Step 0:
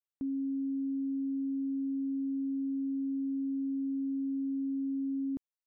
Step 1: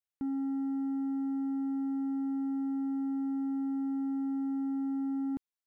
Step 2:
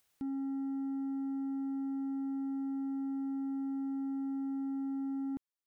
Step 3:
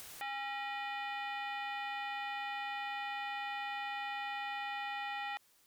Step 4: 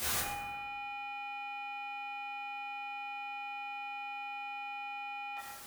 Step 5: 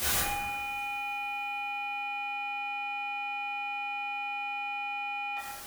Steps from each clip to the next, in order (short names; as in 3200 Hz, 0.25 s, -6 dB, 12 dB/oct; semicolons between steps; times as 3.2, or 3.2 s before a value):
sample leveller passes 1
upward compressor, threshold -54 dBFS; gain -3.5 dB
limiter -44.5 dBFS, peak gain reduction 11 dB; sine folder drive 13 dB, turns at -44.5 dBFS; gain +8.5 dB
negative-ratio compressor -51 dBFS, ratio -1; reverb RT60 1.3 s, pre-delay 6 ms, DRR -8.5 dB; gain +2 dB
low shelf 68 Hz +6.5 dB; two-slope reverb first 0.34 s, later 4.4 s, from -19 dB, DRR 7 dB; gain +4.5 dB